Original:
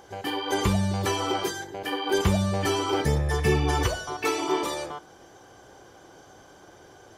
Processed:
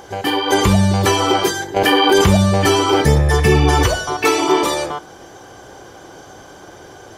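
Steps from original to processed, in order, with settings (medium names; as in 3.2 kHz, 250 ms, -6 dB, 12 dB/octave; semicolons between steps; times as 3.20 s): loudness maximiser +14 dB; 1.76–2.37 s: level flattener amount 70%; trim -2.5 dB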